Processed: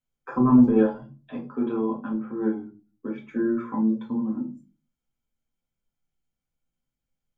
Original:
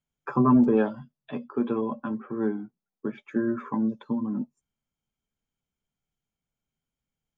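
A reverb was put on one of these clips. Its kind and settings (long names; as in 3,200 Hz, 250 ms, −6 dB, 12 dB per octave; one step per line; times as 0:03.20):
rectangular room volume 140 cubic metres, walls furnished, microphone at 2 metres
level −5.5 dB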